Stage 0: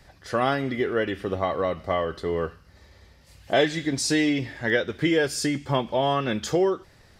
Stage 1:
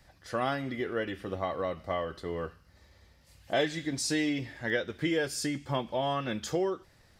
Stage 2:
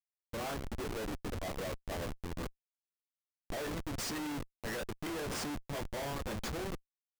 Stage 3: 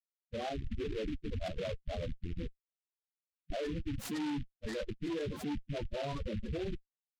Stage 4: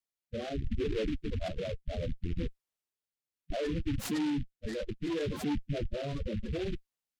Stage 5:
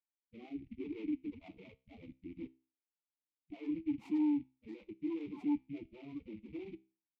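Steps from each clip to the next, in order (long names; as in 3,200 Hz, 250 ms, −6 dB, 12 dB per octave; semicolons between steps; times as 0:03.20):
high-shelf EQ 9,100 Hz +4.5 dB; notch filter 410 Hz, Q 12; level −7 dB
resonators tuned to a chord D2 sus4, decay 0.2 s; harmonic and percussive parts rebalanced harmonic −10 dB; comparator with hysteresis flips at −47 dBFS; level +9 dB
spectral peaks only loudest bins 8; short delay modulated by noise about 2,400 Hz, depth 0.075 ms; level +4 dB
rotating-speaker cabinet horn 0.7 Hz; level +5.5 dB
formant filter u; tuned comb filter 65 Hz, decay 0.35 s, harmonics all, mix 40%; level +4.5 dB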